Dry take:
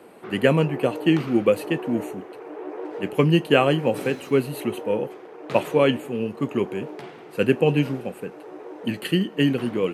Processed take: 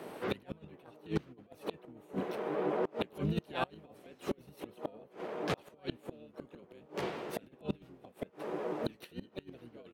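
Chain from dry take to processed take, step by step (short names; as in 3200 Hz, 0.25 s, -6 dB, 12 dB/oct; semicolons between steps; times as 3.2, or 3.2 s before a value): negative-ratio compressor -23 dBFS, ratio -0.5; harmoniser -12 st -11 dB, +5 st -3 dB; flipped gate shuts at -17 dBFS, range -28 dB; gain -4 dB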